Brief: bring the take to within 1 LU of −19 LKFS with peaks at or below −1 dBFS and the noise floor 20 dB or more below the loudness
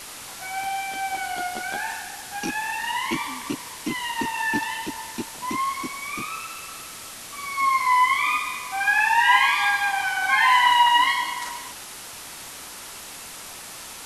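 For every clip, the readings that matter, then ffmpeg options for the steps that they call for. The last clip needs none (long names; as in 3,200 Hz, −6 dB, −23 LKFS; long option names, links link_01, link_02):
background noise floor −39 dBFS; target noise floor −43 dBFS; integrated loudness −22.5 LKFS; sample peak −5.5 dBFS; target loudness −19.0 LKFS
→ -af "afftdn=noise_reduction=6:noise_floor=-39"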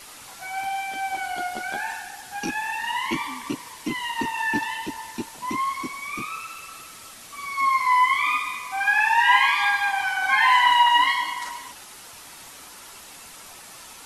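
background noise floor −44 dBFS; integrated loudness −22.5 LKFS; sample peak −5.5 dBFS; target loudness −19.0 LKFS
→ -af "volume=3.5dB"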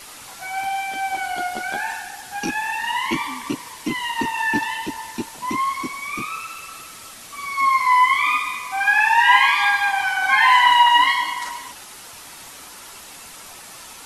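integrated loudness −19.0 LKFS; sample peak −2.0 dBFS; background noise floor −40 dBFS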